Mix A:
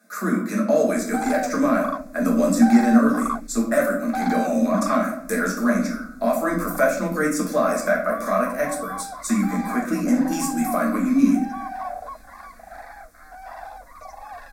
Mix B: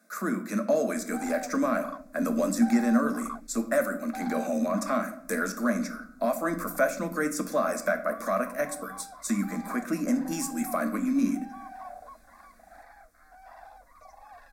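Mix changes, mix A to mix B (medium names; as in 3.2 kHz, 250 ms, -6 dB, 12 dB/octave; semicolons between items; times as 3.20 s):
speech: send -11.5 dB; background -11.5 dB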